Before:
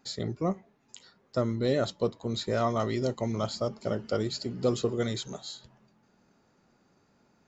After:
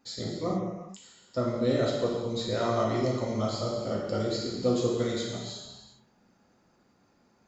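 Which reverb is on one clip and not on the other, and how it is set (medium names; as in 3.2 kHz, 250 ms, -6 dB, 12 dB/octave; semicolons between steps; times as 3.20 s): gated-style reverb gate 460 ms falling, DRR -4 dB; trim -4.5 dB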